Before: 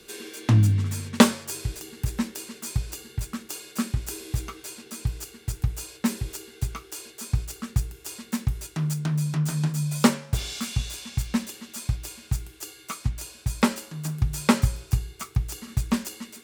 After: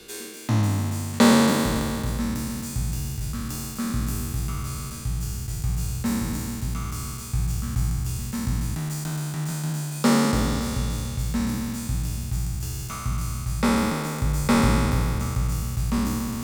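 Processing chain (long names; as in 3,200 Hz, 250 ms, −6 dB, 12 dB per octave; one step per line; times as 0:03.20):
peak hold with a decay on every bin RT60 2.89 s
reversed playback
upward compression, threshold −21 dBFS
reversed playback
dynamic equaliser 2,900 Hz, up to −4 dB, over −41 dBFS, Q 2.4
level −5.5 dB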